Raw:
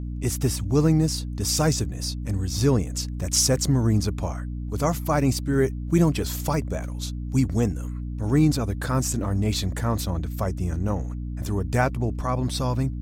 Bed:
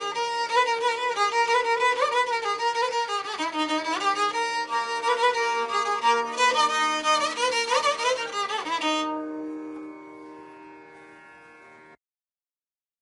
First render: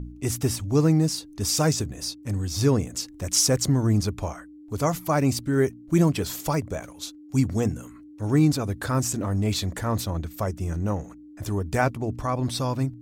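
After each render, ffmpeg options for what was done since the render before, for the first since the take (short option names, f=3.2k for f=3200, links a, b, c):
-af "bandreject=f=60:t=h:w=4,bandreject=f=120:t=h:w=4,bandreject=f=180:t=h:w=4,bandreject=f=240:t=h:w=4"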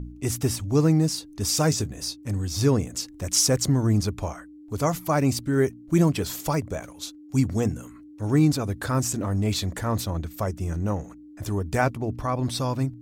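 -filter_complex "[0:a]asettb=1/sr,asplit=3[a][b][c];[a]atrim=end=1.704[d];[b]atrim=start=1.7:end=2.18,asetpts=PTS-STARTPTS,afade=t=in:d=0.004:c=qsin,afade=t=out:st=0.476:d=0.004:c=qsin,asplit=2[e][f];[f]adelay=19,volume=-12dB[g];[e][g]amix=inputs=2:normalize=0,atrim=end_sample=21168[h];[c]atrim=start=2.176[i];[d][h]acrossfade=d=0.004:c1=hsin:c2=qsin[j];[j][i]acrossfade=d=0.004:c1=qsin:c2=hsin,asettb=1/sr,asplit=3[k][l][m];[k]atrim=end=11.984[n];[l]atrim=start=11.98:end=12.39,asetpts=PTS-STARTPTS,afade=t=in:d=0.004:c=qsin,afade=t=out:st=0.406:d=0.004:c=qsin,equalizer=f=7.5k:w=2.7:g=-7.5[o];[m]atrim=start=12.386[p];[n][o]acrossfade=d=0.004:c1=hsin:c2=qsin[q];[q][p]acrossfade=d=0.004:c1=qsin:c2=hsin"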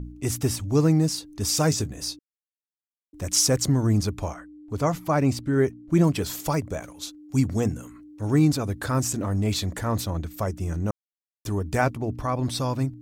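-filter_complex "[0:a]asettb=1/sr,asplit=3[a][b][c];[a]atrim=end=4.344[d];[b]atrim=start=4.34:end=6.04,asetpts=PTS-STARTPTS,afade=t=in:d=0.004:c=qsin,afade=t=out:st=1.696:d=0.004:c=qsin,aemphasis=mode=reproduction:type=cd[e];[c]atrim=start=6.036[f];[d][e]acrossfade=d=0.004:c1=hsin:c2=qsin[g];[g][f]acrossfade=d=0.004:c1=qsin:c2=hsin,asplit=5[h][i][j][k][l];[h]atrim=end=2.19,asetpts=PTS-STARTPTS,afade=t=out:st=2.186:d=0.004:c=hsin[m];[i]atrim=start=2.19:end=3.13,asetpts=PTS-STARTPTS,volume=0[n];[j]atrim=start=3.13:end=10.91,asetpts=PTS-STARTPTS,afade=t=in:d=0.004:c=hsin,afade=t=out:st=7.776:d=0.004:c=hsin[o];[k]atrim=start=10.91:end=11.45,asetpts=PTS-STARTPTS,volume=0[p];[l]atrim=start=11.45,asetpts=PTS-STARTPTS,afade=t=in:d=0.004:c=hsin[q];[m][n][o][p][q]concat=n=5:v=0:a=1"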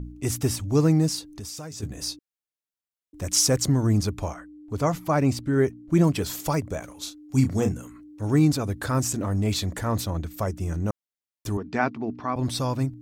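-filter_complex "[0:a]asplit=3[a][b][c];[a]afade=t=out:st=1.32:d=0.02[d];[b]acompressor=threshold=-33dB:ratio=16:attack=3.2:release=140:knee=1:detection=peak,afade=t=in:st=1.32:d=0.02,afade=t=out:st=1.82:d=0.02[e];[c]afade=t=in:st=1.82:d=0.02[f];[d][e][f]amix=inputs=3:normalize=0,asettb=1/sr,asplit=3[g][h][i];[g]atrim=end=6.884[j];[h]atrim=start=6.88:end=7.73,asetpts=PTS-STARTPTS,afade=t=in:d=0.004:c=qsin,afade=t=out:st=0.846:d=0.004:c=qsin,asplit=2[k][l];[l]adelay=31,volume=-7.5dB[m];[k][m]amix=inputs=2:normalize=0,atrim=end_sample=37485[n];[i]atrim=start=7.726[o];[j][n]acrossfade=d=0.004:c1=hsin:c2=qsin[p];[p][o]acrossfade=d=0.004:c1=qsin:c2=hsin,asettb=1/sr,asplit=3[q][r][s];[q]atrim=end=11.574[t];[r]atrim=start=11.57:end=12.36,asetpts=PTS-STARTPTS,afade=t=in:d=0.004:c=qsin,afade=t=out:st=0.786:d=0.004:c=qsin,highpass=220,equalizer=f=230:t=q:w=4:g=6,equalizer=f=540:t=q:w=4:g=-8,equalizer=f=3.2k:t=q:w=4:g=-4,lowpass=f=4.6k:w=0.5412,lowpass=f=4.6k:w=1.3066[u];[s]atrim=start=12.356[v];[t][u]acrossfade=d=0.004:c1=hsin:c2=qsin[w];[w][v]acrossfade=d=0.004:c1=qsin:c2=hsin"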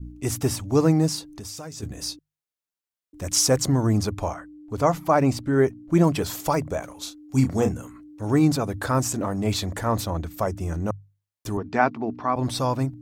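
-af "adynamicequalizer=threshold=0.0126:dfrequency=800:dqfactor=0.78:tfrequency=800:tqfactor=0.78:attack=5:release=100:ratio=0.375:range=3:mode=boostabove:tftype=bell,bandreject=f=50:t=h:w=6,bandreject=f=100:t=h:w=6,bandreject=f=150:t=h:w=6"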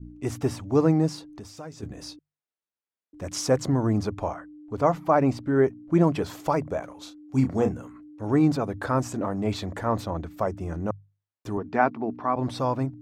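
-af "lowpass=f=1.7k:p=1,lowshelf=f=100:g=-9.5"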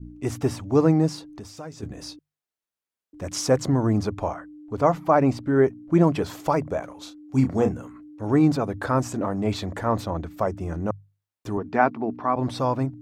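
-af "volume=2dB"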